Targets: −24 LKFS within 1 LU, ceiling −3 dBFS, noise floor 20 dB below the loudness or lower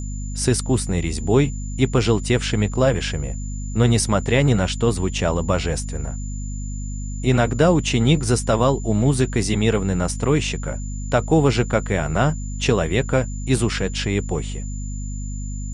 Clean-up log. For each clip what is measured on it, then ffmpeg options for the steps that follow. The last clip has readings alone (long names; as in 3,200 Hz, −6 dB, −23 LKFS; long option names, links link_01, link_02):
mains hum 50 Hz; hum harmonics up to 250 Hz; level of the hum −26 dBFS; interfering tone 7,100 Hz; level of the tone −39 dBFS; integrated loudness −21.0 LKFS; sample peak −3.0 dBFS; target loudness −24.0 LKFS
→ -af "bandreject=frequency=50:width_type=h:width=4,bandreject=frequency=100:width_type=h:width=4,bandreject=frequency=150:width_type=h:width=4,bandreject=frequency=200:width_type=h:width=4,bandreject=frequency=250:width_type=h:width=4"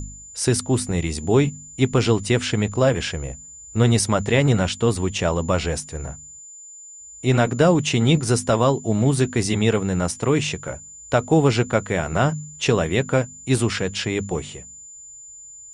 mains hum none found; interfering tone 7,100 Hz; level of the tone −39 dBFS
→ -af "bandreject=frequency=7100:width=30"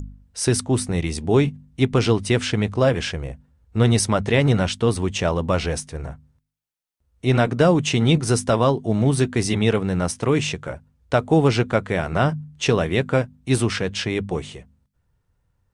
interfering tone none found; integrated loudness −21.0 LKFS; sample peak −3.0 dBFS; target loudness −24.0 LKFS
→ -af "volume=-3dB"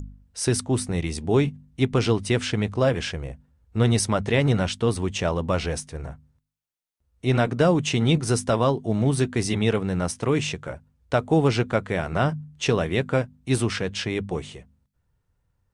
integrated loudness −24.0 LKFS; sample peak −6.0 dBFS; background noise floor −74 dBFS